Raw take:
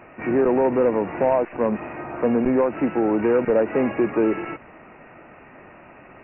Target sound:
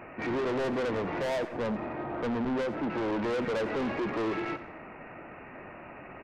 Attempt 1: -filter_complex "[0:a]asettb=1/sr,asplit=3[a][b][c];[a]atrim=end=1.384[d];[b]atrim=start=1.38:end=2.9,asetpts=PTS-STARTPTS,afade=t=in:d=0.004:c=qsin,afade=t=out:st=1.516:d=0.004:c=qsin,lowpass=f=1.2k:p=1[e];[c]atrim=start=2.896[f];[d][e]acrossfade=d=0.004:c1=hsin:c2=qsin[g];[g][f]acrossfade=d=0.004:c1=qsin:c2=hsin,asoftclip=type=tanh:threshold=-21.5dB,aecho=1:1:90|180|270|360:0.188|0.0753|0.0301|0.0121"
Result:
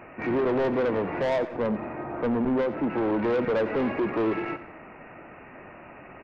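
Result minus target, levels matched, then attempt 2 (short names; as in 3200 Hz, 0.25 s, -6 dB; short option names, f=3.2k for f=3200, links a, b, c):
soft clip: distortion -4 dB
-filter_complex "[0:a]asettb=1/sr,asplit=3[a][b][c];[a]atrim=end=1.384[d];[b]atrim=start=1.38:end=2.9,asetpts=PTS-STARTPTS,afade=t=in:d=0.004:c=qsin,afade=t=out:st=1.516:d=0.004:c=qsin,lowpass=f=1.2k:p=1[e];[c]atrim=start=2.896[f];[d][e]acrossfade=d=0.004:c1=hsin:c2=qsin[g];[g][f]acrossfade=d=0.004:c1=qsin:c2=hsin,asoftclip=type=tanh:threshold=-28.5dB,aecho=1:1:90|180|270|360:0.188|0.0753|0.0301|0.0121"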